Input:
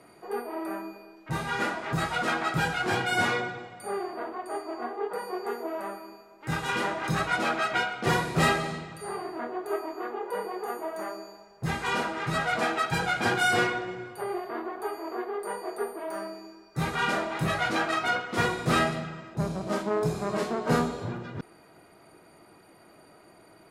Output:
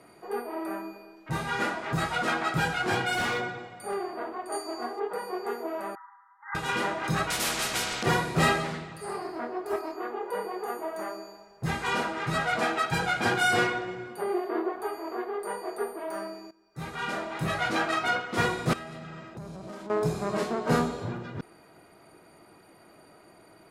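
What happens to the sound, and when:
0:03.12–0:03.96: hard clipping −25 dBFS
0:04.52–0:05.00: flat-topped bell 7,300 Hz +12 dB
0:05.95–0:06.55: linear-phase brick-wall band-pass 800–2,100 Hz
0:07.30–0:08.03: every bin compressed towards the loudest bin 4 to 1
0:08.64–0:09.96: highs frequency-modulated by the lows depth 0.24 ms
0:14.07–0:14.72: high-pass with resonance 180 Hz → 420 Hz, resonance Q 2.6
0:16.51–0:17.78: fade in, from −15.5 dB
0:18.73–0:19.90: downward compressor 8 to 1, threshold −37 dBFS

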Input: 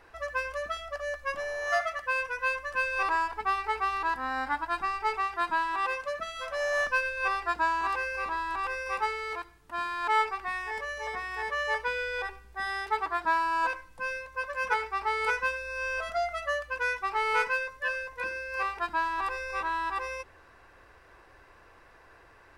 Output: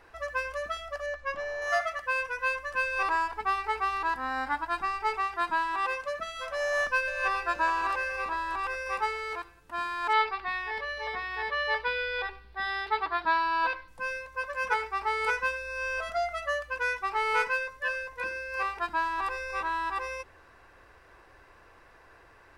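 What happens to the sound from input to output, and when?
0:01.06–0:01.62: high-frequency loss of the air 90 metres
0:06.65–0:07.49: delay throw 420 ms, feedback 55%, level −11 dB
0:10.13–0:13.88: high shelf with overshoot 5,400 Hz −9.5 dB, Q 3

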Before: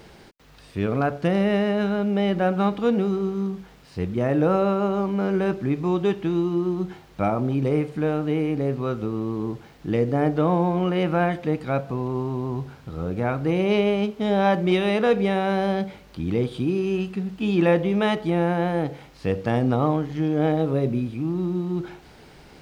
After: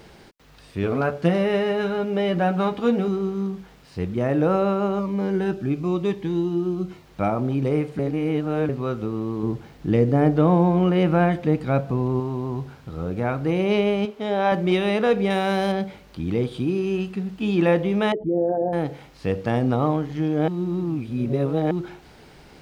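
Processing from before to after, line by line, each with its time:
0:00.82–0:03.08: double-tracking delay 12 ms −5 dB
0:04.99–0:07.06: phaser whose notches keep moving one way falling 1 Hz
0:07.99–0:08.69: reverse
0:09.43–0:12.20: low-shelf EQ 360 Hz +6 dB
0:14.05–0:14.52: bass and treble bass −10 dB, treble −4 dB
0:15.30–0:15.72: high-shelf EQ 3,100 Hz +10 dB
0:18.12–0:18.73: spectral envelope exaggerated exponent 3
0:20.48–0:21.71: reverse

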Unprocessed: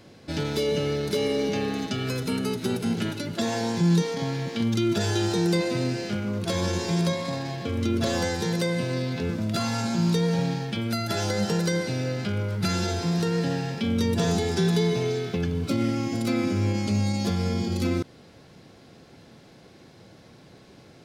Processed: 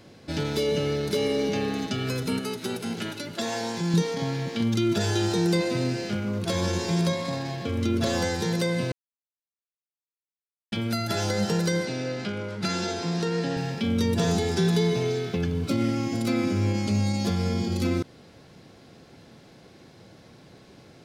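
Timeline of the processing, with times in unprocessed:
0:02.39–0:03.94: low-shelf EQ 270 Hz −10 dB
0:08.92–0:10.72: silence
0:11.85–0:13.57: band-pass filter 180–7,900 Hz

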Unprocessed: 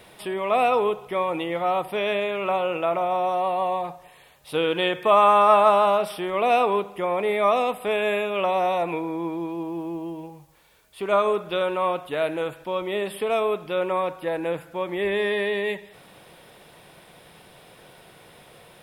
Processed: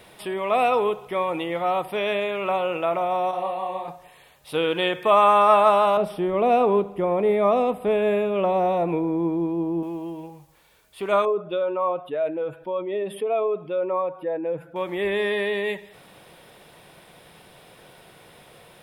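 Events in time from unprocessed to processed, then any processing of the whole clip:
0:03.31–0:03.88: micro pitch shift up and down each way 49 cents
0:05.97–0:09.83: tilt shelving filter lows +8.5 dB, about 740 Hz
0:11.25–0:14.76: expanding power law on the bin magnitudes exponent 1.6

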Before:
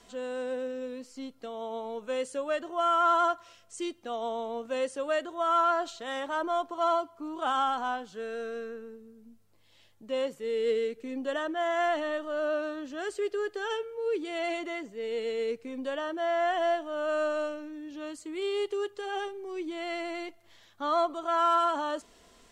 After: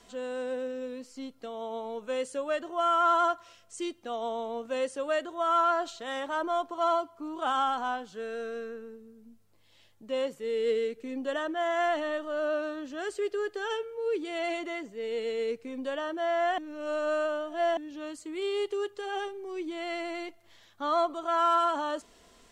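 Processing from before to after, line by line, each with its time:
0:16.58–0:17.77: reverse

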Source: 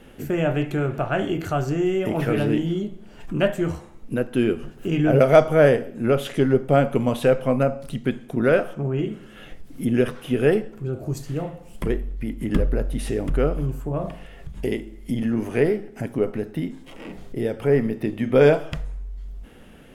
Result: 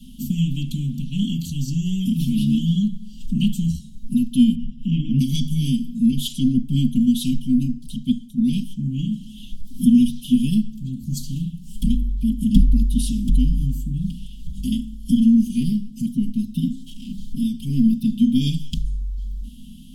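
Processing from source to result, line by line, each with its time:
0:04.55–0:05.19: Savitzky-Golay smoothing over 25 samples
0:06.11–0:08.70: multiband upward and downward expander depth 70%
whole clip: Chebyshev band-stop filter 250–3,100 Hz, order 5; mains-hum notches 50/100/150 Hz; comb filter 4.5 ms, depth 97%; level +5 dB

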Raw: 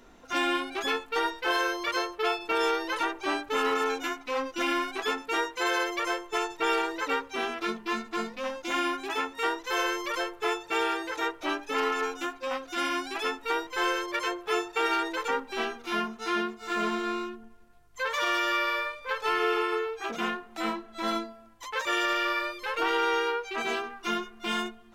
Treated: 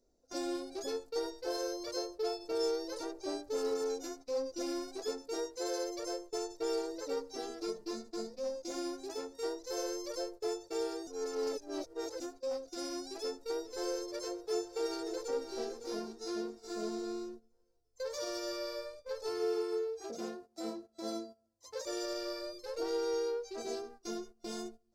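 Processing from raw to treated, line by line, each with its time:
0:07.16–0:07.91: comb filter 6.6 ms, depth 73%
0:11.07–0:12.20: reverse
0:13.22–0:13.98: delay throw 420 ms, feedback 80%, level −18 dB
0:14.50–0:15.56: delay throw 560 ms, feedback 40%, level −9.5 dB
0:19.29–0:21.84: high-pass filter 58 Hz
whole clip: noise gate −41 dBFS, range −14 dB; drawn EQ curve 110 Hz 0 dB, 170 Hz −7 dB, 560 Hz +3 dB, 1,000 Hz −16 dB, 3,100 Hz −21 dB, 4,700 Hz +5 dB, 13,000 Hz −4 dB; level −4.5 dB

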